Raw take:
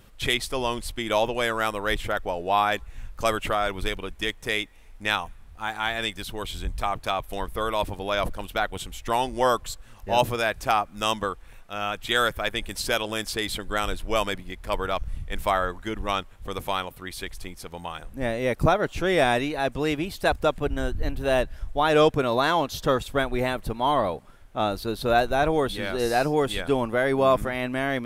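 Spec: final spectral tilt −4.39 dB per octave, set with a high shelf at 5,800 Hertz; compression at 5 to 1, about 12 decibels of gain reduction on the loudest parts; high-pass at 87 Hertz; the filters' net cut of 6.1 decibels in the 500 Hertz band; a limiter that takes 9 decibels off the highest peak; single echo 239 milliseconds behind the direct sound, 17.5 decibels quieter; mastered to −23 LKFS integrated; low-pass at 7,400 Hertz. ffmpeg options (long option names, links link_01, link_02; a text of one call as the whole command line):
ffmpeg -i in.wav -af "highpass=87,lowpass=7400,equalizer=frequency=500:width_type=o:gain=-8,highshelf=frequency=5800:gain=-3,acompressor=threshold=-32dB:ratio=5,alimiter=level_in=2dB:limit=-24dB:level=0:latency=1,volume=-2dB,aecho=1:1:239:0.133,volume=15dB" out.wav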